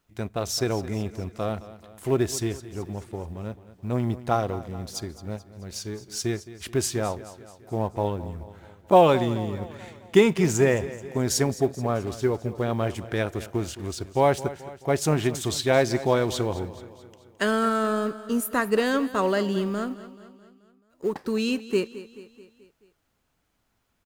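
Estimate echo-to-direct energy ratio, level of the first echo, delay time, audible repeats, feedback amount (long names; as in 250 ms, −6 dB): −14.5 dB, −16.0 dB, 216 ms, 4, 54%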